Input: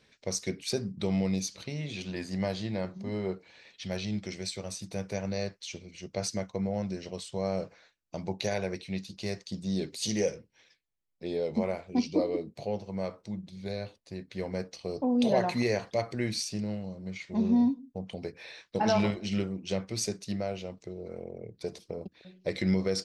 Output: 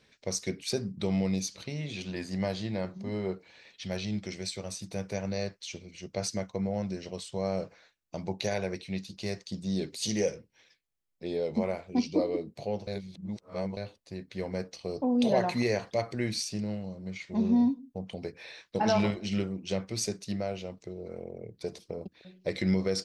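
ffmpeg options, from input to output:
-filter_complex "[0:a]asplit=3[s0][s1][s2];[s0]atrim=end=12.872[s3];[s1]atrim=start=12.868:end=13.772,asetpts=PTS-STARTPTS,areverse[s4];[s2]atrim=start=13.768[s5];[s3][s4]acrossfade=d=0.004:c1=hsin:c2=hsin[s6];[s6][s5]acrossfade=d=0.004:c1=hsin:c2=hsin"

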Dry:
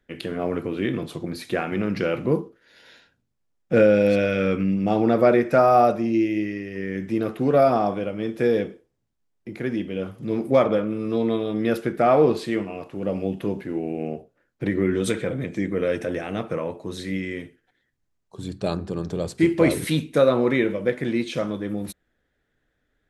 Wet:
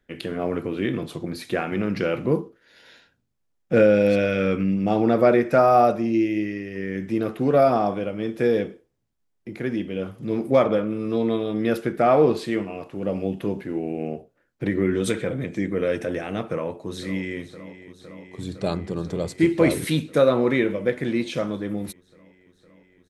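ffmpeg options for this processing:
-filter_complex "[0:a]asplit=2[s0][s1];[s1]afade=t=in:st=16.47:d=0.01,afade=t=out:st=17.41:d=0.01,aecho=0:1:510|1020|1530|2040|2550|3060|3570|4080|4590|5100|5610|6120:0.188365|0.16011|0.136094|0.11568|0.0983277|0.0835785|0.0710417|0.0603855|0.0513277|0.0436285|0.0370842|0.0315216[s2];[s0][s2]amix=inputs=2:normalize=0"

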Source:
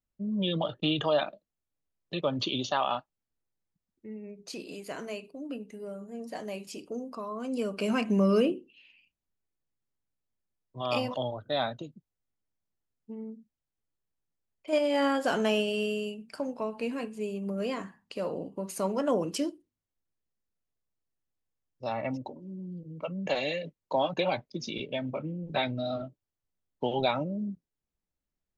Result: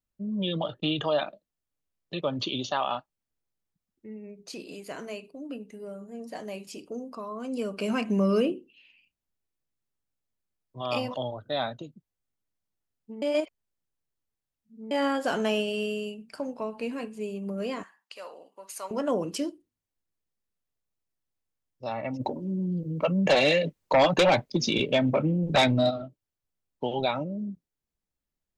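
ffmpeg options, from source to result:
-filter_complex "[0:a]asettb=1/sr,asplit=3[s0][s1][s2];[s0]atrim=end=17.834[s3];[s1]atrim=start=17.83:end=18.91,asetpts=PTS-STARTPTS,afade=t=in:d=0.004:c=qsin,afade=t=out:st=1.076:d=0.004:c=qsin,highpass=960[s4];[s2]atrim=start=18.906[s5];[s3][s4]acrossfade=d=0.004:c1=hsin:c2=qsin[s6];[s6][s5]acrossfade=d=0.004:c1=qsin:c2=hsin,asplit=3[s7][s8][s9];[s7]afade=t=out:st=22.19:d=0.02[s10];[s8]aeval=exprs='0.178*sin(PI/2*2.24*val(0)/0.178)':c=same,afade=t=in:st=22.19:d=0.02,afade=t=out:st=25.89:d=0.02[s11];[s9]afade=t=in:st=25.89:d=0.02[s12];[s10][s11][s12]amix=inputs=3:normalize=0,asplit=3[s13][s14][s15];[s13]atrim=end=13.222[s16];[s14]atrim=start=13.218:end=14.912,asetpts=PTS-STARTPTS,areverse[s17];[s15]atrim=start=14.908[s18];[s16][s17]acrossfade=d=0.004:c1=hsin:c2=hsin[s19];[s19][s18]acrossfade=d=0.004:c1=hsin:c2=hsin"

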